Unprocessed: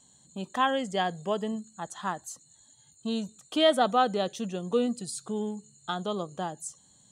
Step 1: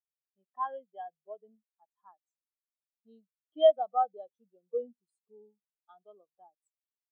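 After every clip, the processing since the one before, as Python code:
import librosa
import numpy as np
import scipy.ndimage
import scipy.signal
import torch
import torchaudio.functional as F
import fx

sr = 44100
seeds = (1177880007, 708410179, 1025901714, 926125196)

y = fx.bass_treble(x, sr, bass_db=-13, treble_db=-2)
y = fx.spectral_expand(y, sr, expansion=2.5)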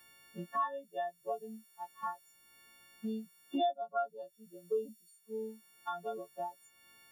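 y = fx.freq_snap(x, sr, grid_st=4)
y = fx.peak_eq(y, sr, hz=710.0, db=-10.5, octaves=2.4)
y = fx.band_squash(y, sr, depth_pct=100)
y = F.gain(torch.from_numpy(y), 11.5).numpy()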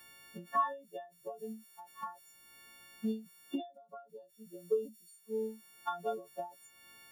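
y = fx.end_taper(x, sr, db_per_s=160.0)
y = F.gain(torch.from_numpy(y), 4.0).numpy()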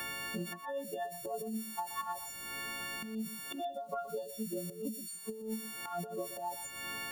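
y = fx.over_compress(x, sr, threshold_db=-48.0, ratio=-1.0)
y = y + 10.0 ** (-13.5 / 20.0) * np.pad(y, (int(122 * sr / 1000.0), 0))[:len(y)]
y = fx.band_squash(y, sr, depth_pct=70)
y = F.gain(torch.from_numpy(y), 7.0).numpy()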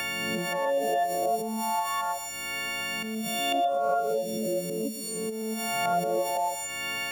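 y = fx.spec_swells(x, sr, rise_s=1.03)
y = fx.graphic_eq_15(y, sr, hz=(630, 2500, 6300), db=(10, 10, 7))
y = fx.pre_swell(y, sr, db_per_s=22.0)
y = F.gain(torch.from_numpy(y), 3.0).numpy()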